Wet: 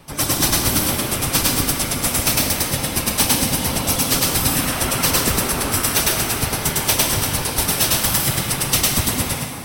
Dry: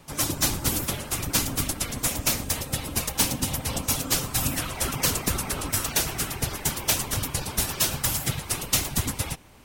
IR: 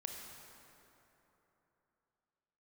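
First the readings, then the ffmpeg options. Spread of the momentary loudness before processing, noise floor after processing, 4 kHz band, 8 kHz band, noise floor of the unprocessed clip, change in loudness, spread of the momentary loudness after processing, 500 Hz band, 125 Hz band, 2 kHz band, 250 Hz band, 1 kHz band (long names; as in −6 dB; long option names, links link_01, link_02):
4 LU, −26 dBFS, +8.5 dB, +7.5 dB, −39 dBFS, +8.0 dB, 4 LU, +9.0 dB, +6.5 dB, +9.0 dB, +8.5 dB, +9.0 dB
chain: -filter_complex "[0:a]bandreject=frequency=6900:width=6.7,asplit=2[link_01][link_02];[link_02]highpass=150[link_03];[1:a]atrim=start_sample=2205,adelay=104[link_04];[link_03][link_04]afir=irnorm=-1:irlink=0,volume=3.5dB[link_05];[link_01][link_05]amix=inputs=2:normalize=0,volume=5dB"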